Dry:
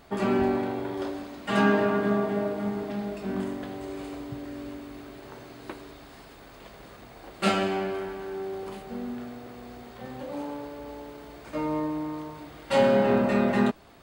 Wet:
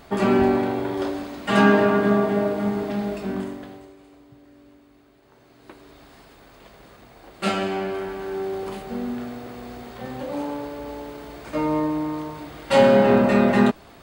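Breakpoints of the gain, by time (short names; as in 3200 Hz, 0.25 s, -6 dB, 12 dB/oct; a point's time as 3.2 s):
3.15 s +6 dB
3.75 s -4 dB
3.97 s -13 dB
5.22 s -13 dB
6.01 s -1 dB
7.28 s -1 dB
8.37 s +6 dB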